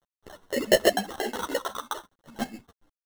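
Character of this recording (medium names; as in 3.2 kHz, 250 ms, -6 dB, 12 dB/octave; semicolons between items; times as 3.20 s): aliases and images of a low sample rate 2.4 kHz, jitter 0%; chopped level 7.1 Hz, depth 60%, duty 25%; a quantiser's noise floor 12-bit, dither none; a shimmering, thickened sound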